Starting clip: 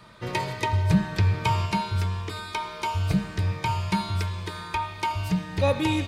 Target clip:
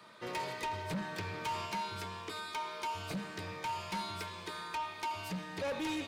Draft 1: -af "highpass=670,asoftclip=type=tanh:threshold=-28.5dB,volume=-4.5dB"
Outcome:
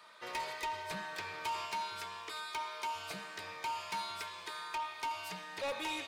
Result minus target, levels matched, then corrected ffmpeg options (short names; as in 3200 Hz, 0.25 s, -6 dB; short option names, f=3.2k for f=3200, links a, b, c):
250 Hz band -9.5 dB
-af "highpass=260,asoftclip=type=tanh:threshold=-28.5dB,volume=-4.5dB"